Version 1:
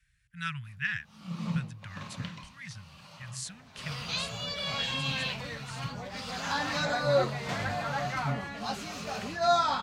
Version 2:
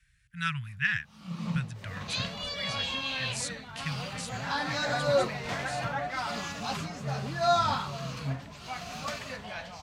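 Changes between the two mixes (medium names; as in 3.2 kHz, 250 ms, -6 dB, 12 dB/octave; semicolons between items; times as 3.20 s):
speech +4.0 dB; second sound: entry -2.00 s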